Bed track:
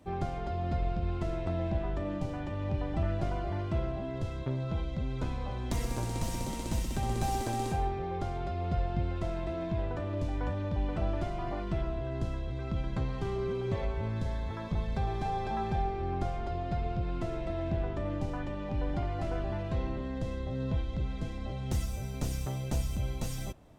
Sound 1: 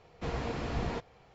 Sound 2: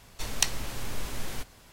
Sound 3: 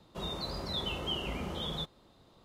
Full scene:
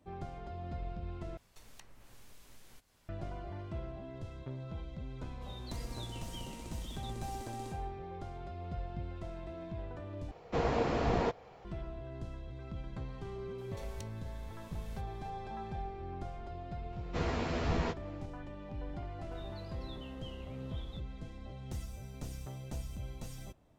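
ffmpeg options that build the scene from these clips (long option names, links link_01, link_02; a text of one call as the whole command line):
ffmpeg -i bed.wav -i cue0.wav -i cue1.wav -i cue2.wav -filter_complex "[2:a]asplit=2[link_01][link_02];[3:a]asplit=2[link_03][link_04];[1:a]asplit=2[link_05][link_06];[0:a]volume=-9.5dB[link_07];[link_01]acrossover=split=2400|6500[link_08][link_09][link_10];[link_08]acompressor=threshold=-39dB:ratio=4[link_11];[link_09]acompressor=threshold=-54dB:ratio=4[link_12];[link_10]acompressor=threshold=-52dB:ratio=4[link_13];[link_11][link_12][link_13]amix=inputs=3:normalize=0[link_14];[link_03]acrossover=split=130|3000[link_15][link_16][link_17];[link_16]acompressor=threshold=-45dB:ratio=6:attack=3.2:release=140:knee=2.83:detection=peak[link_18];[link_15][link_18][link_17]amix=inputs=3:normalize=0[link_19];[link_05]equalizer=frequency=580:width_type=o:width=2.3:gain=7[link_20];[link_02]acompressor=threshold=-34dB:ratio=3:attack=1:release=823:knee=1:detection=rms[link_21];[link_06]asplit=2[link_22][link_23];[link_23]adelay=12,volume=-2.5dB[link_24];[link_22][link_24]amix=inputs=2:normalize=0[link_25];[link_07]asplit=3[link_26][link_27][link_28];[link_26]atrim=end=1.374[link_29];[link_14]atrim=end=1.72,asetpts=PTS-STARTPTS,volume=-14dB[link_30];[link_27]atrim=start=3.086:end=10.314[link_31];[link_20]atrim=end=1.34[link_32];[link_28]atrim=start=11.646[link_33];[link_19]atrim=end=2.44,asetpts=PTS-STARTPTS,volume=-11.5dB,afade=type=in:duration=0.004:curve=hsin,afade=type=out:start_time=2.436:duration=0.004:curve=hsin,adelay=5260[link_34];[link_21]atrim=end=1.72,asetpts=PTS-STARTPTS,volume=-12dB,afade=type=in:duration=0.004:curve=hsin,afade=type=out:start_time=1.716:duration=0.004:curve=hsin,adelay=13580[link_35];[link_25]atrim=end=1.34,asetpts=PTS-STARTPTS,volume=-0.5dB,afade=type=in:duration=0.004:curve=hsin,afade=type=out:start_time=1.336:duration=0.004:curve=hsin,adelay=16920[link_36];[link_04]atrim=end=2.44,asetpts=PTS-STARTPTS,volume=-18dB,afade=type=in:duration=0.004:curve=hsin,afade=type=out:start_time=2.436:duration=0.004:curve=hsin,adelay=19150[link_37];[link_29][link_30]acrossfade=duration=0.004:curve1=hsin:curve2=hsin[link_38];[link_38][link_31]acrossfade=duration=0.004:curve1=hsin:curve2=hsin[link_39];[link_39][link_32]acrossfade=duration=0.004:curve1=hsin:curve2=hsin[link_40];[link_40][link_33]acrossfade=duration=0.004:curve1=hsin:curve2=hsin[link_41];[link_41][link_34][link_35][link_36][link_37]amix=inputs=5:normalize=0" out.wav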